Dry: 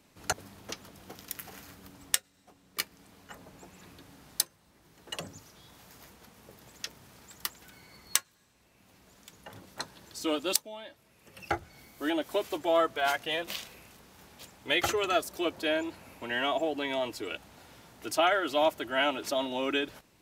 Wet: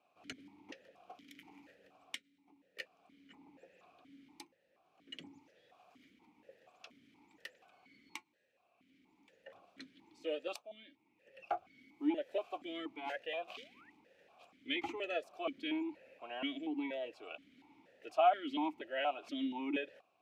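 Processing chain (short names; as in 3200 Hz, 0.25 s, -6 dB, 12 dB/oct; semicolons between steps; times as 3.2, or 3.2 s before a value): painted sound rise, 13.57–13.9, 400–2000 Hz -37 dBFS; vowel sequencer 4.2 Hz; gain +2 dB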